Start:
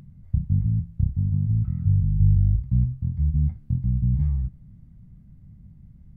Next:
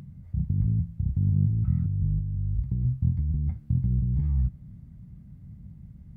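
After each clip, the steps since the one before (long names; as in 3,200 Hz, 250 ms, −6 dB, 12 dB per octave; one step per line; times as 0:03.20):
compressor whose output falls as the input rises −24 dBFS, ratio −1
high-pass filter 44 Hz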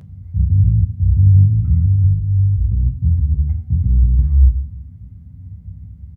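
double-tracking delay 12 ms −5 dB
on a send at −7 dB: convolution reverb RT60 1.0 s, pre-delay 3 ms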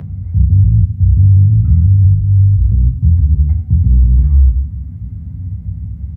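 boost into a limiter +6 dB
multiband upward and downward compressor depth 40%
level −1 dB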